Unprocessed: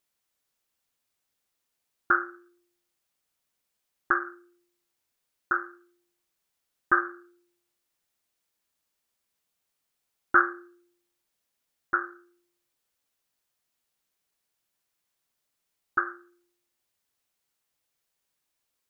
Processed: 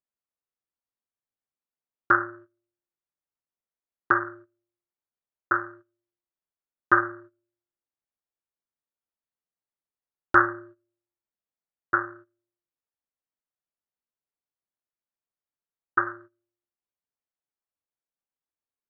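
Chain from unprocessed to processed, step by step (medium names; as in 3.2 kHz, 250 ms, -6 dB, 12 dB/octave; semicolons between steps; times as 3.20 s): low-pass 1.5 kHz 12 dB/octave; gate -52 dBFS, range -17 dB; AM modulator 240 Hz, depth 45%; trim +8 dB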